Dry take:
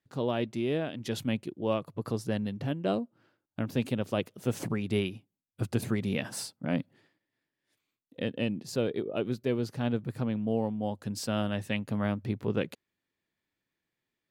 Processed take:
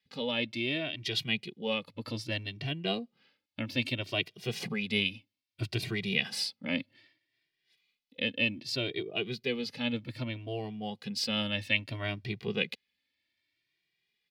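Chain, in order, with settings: high-order bell 3.2 kHz +15 dB; endless flanger 2 ms +0.63 Hz; trim -2 dB

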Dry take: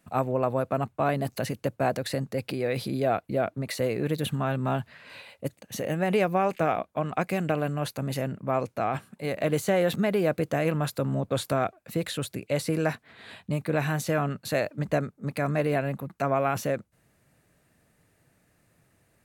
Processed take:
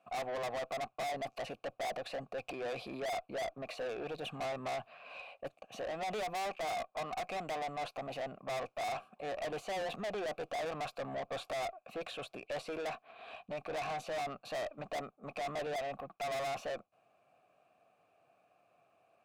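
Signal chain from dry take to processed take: vowel filter a; valve stage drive 46 dB, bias 0.2; trim +10.5 dB

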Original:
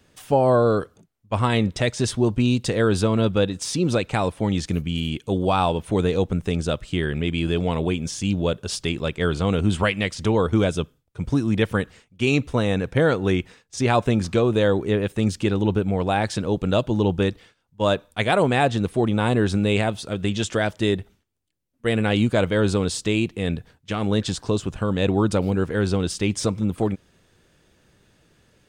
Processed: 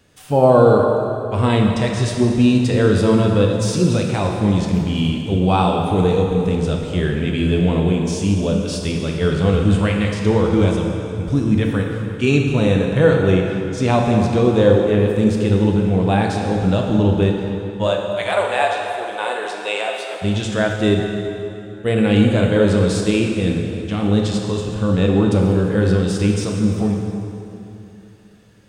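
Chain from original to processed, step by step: 17.87–20.22 s: high-pass 550 Hz 24 dB/octave; harmonic-percussive split harmonic +9 dB; plate-style reverb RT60 3 s, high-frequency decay 0.75×, DRR 0.5 dB; trim -4 dB

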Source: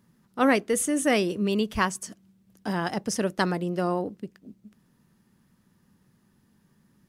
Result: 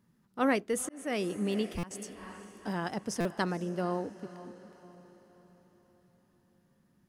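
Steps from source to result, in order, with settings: treble shelf 2.8 kHz -2.5 dB; on a send: echo that smears into a reverb 481 ms, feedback 47%, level -15.5 dB; 0.77–1.91 s: on the sum: slow attack 388 ms; buffer glitch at 1.78/3.20 s, samples 256, times 8; trim -6 dB

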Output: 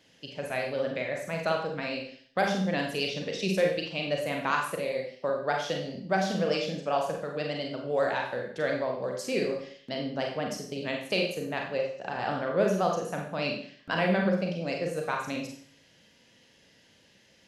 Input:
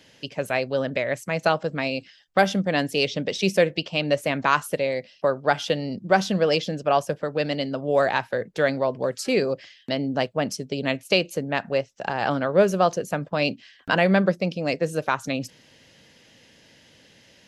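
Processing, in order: vibrato 10 Hz 47 cents; Schroeder reverb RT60 0.55 s, combs from 32 ms, DRR 0.5 dB; trim -9 dB

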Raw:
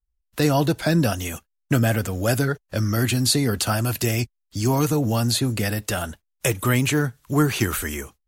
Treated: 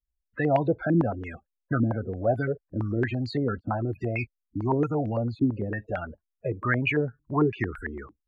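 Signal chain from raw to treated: loudest bins only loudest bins 32; step-sequenced low-pass 8.9 Hz 300–2300 Hz; trim -7.5 dB

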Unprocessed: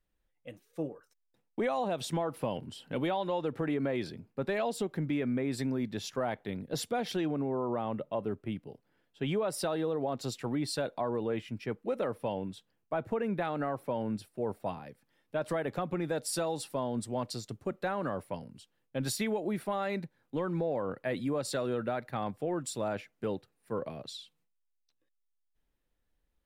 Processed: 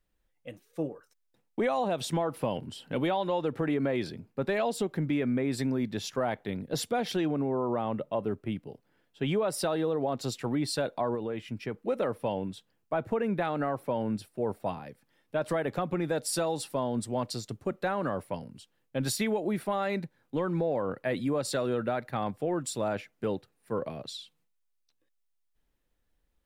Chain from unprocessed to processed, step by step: 11.14–11.74 s: compression, threshold -33 dBFS, peak gain reduction 5.5 dB; trim +3 dB

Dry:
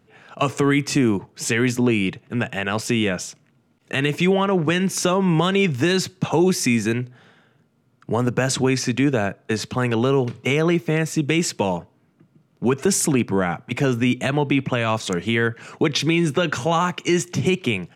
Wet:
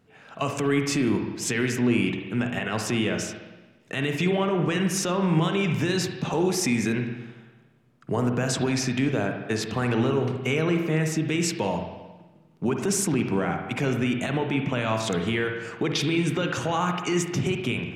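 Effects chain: peak limiter -13.5 dBFS, peak gain reduction 7.5 dB; spring tank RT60 1.2 s, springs 45/57 ms, chirp 30 ms, DRR 4 dB; trim -3 dB

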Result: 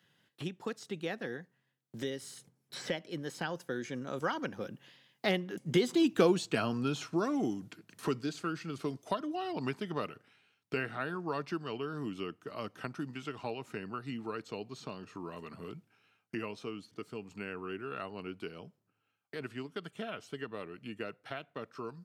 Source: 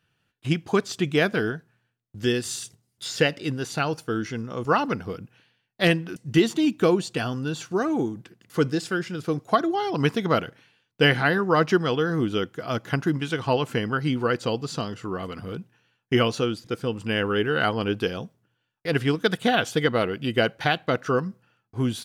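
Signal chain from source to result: Doppler pass-by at 6.29 s, 33 m/s, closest 11 m; high-pass 140 Hz 12 dB/octave; three bands compressed up and down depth 70%; trim +7 dB

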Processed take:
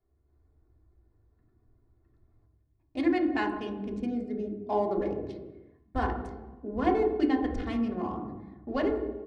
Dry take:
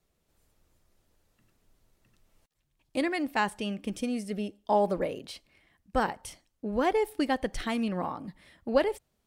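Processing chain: local Wiener filter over 15 samples; low-pass 5 kHz 12 dB/octave; comb 2.8 ms, depth 63%; on a send: reverberation RT60 1.2 s, pre-delay 3 ms, DRR 2 dB; on the sum: trim -6 dB

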